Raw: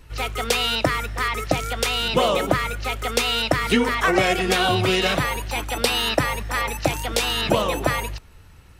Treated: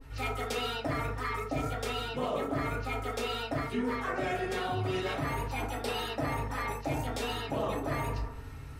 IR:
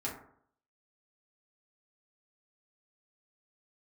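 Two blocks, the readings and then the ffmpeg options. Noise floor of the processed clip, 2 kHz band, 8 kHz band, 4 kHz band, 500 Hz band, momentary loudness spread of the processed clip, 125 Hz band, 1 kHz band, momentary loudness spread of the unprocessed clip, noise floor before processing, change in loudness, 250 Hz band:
−43 dBFS, −13.5 dB, −17.0 dB, −16.5 dB, −11.0 dB, 2 LU, −7.5 dB, −10.0 dB, 7 LU, −47 dBFS, −12.0 dB, −9.5 dB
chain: -filter_complex "[1:a]atrim=start_sample=2205[link_01];[0:a][link_01]afir=irnorm=-1:irlink=0,areverse,acompressor=threshold=-31dB:ratio=5,areverse,adynamicequalizer=threshold=0.00447:dfrequency=1600:dqfactor=0.7:tfrequency=1600:tqfactor=0.7:attack=5:release=100:ratio=0.375:range=2:mode=cutabove:tftype=highshelf"

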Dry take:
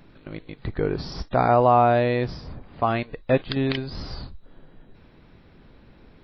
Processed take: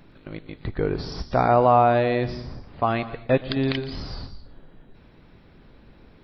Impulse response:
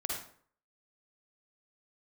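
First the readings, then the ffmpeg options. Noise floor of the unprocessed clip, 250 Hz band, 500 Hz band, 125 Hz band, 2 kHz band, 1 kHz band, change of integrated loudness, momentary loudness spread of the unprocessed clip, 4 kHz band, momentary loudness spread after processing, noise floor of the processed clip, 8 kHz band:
−52 dBFS, +0.5 dB, 0.0 dB, −0.5 dB, 0.0 dB, 0.0 dB, 0.0 dB, 22 LU, +0.5 dB, 22 LU, −52 dBFS, can't be measured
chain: -filter_complex "[0:a]asplit=2[link_01][link_02];[link_02]bass=frequency=250:gain=6,treble=frequency=4000:gain=10[link_03];[1:a]atrim=start_sample=2205,adelay=118[link_04];[link_03][link_04]afir=irnorm=-1:irlink=0,volume=-19dB[link_05];[link_01][link_05]amix=inputs=2:normalize=0"

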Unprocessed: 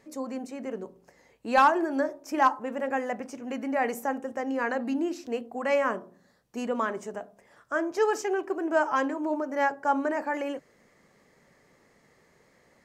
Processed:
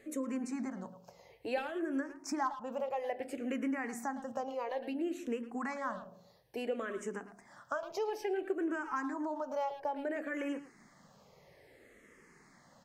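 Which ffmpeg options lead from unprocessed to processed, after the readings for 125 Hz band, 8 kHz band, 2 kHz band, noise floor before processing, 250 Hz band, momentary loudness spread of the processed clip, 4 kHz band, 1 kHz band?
can't be measured, −5.0 dB, −11.0 dB, −64 dBFS, −6.0 dB, 10 LU, −7.5 dB, −12.0 dB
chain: -filter_complex "[0:a]acompressor=threshold=-35dB:ratio=5,asplit=2[link_01][link_02];[link_02]adelay=110,highpass=300,lowpass=3400,asoftclip=type=hard:threshold=-34dB,volume=-11dB[link_03];[link_01][link_03]amix=inputs=2:normalize=0,asplit=2[link_04][link_05];[link_05]afreqshift=-0.59[link_06];[link_04][link_06]amix=inputs=2:normalize=1,volume=3.5dB"

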